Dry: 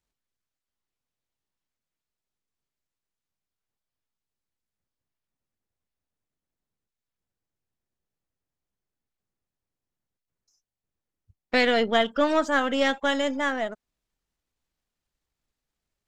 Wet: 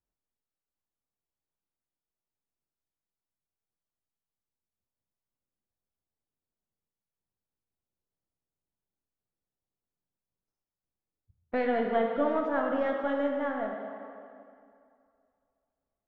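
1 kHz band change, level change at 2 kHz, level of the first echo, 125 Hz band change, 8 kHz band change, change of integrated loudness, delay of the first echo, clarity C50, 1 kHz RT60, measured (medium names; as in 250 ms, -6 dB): -5.0 dB, -11.0 dB, no echo, no reading, under -30 dB, -5.5 dB, no echo, 2.5 dB, 2.4 s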